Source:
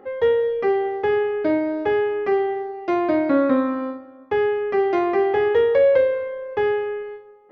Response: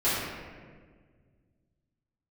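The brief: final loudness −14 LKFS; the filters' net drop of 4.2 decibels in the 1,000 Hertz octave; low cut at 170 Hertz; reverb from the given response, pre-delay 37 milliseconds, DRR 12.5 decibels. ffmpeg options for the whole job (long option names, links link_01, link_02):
-filter_complex "[0:a]highpass=170,equalizer=frequency=1000:width_type=o:gain=-6,asplit=2[link_01][link_02];[1:a]atrim=start_sample=2205,adelay=37[link_03];[link_02][link_03]afir=irnorm=-1:irlink=0,volume=-26dB[link_04];[link_01][link_04]amix=inputs=2:normalize=0,volume=6.5dB"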